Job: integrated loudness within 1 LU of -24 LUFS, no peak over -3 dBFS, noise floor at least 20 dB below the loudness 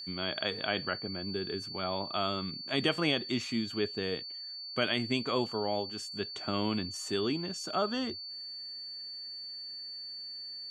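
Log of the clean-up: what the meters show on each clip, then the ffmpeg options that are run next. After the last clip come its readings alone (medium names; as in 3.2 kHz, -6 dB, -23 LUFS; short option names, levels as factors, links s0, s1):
steady tone 4.5 kHz; tone level -40 dBFS; loudness -34.0 LUFS; peak level -14.5 dBFS; loudness target -24.0 LUFS
-> -af "bandreject=f=4500:w=30"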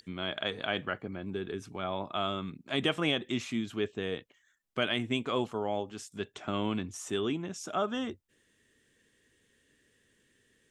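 steady tone not found; loudness -34.0 LUFS; peak level -14.5 dBFS; loudness target -24.0 LUFS
-> -af "volume=3.16"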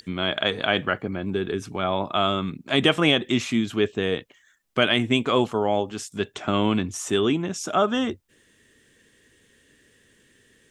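loudness -24.0 LUFS; peak level -4.5 dBFS; noise floor -61 dBFS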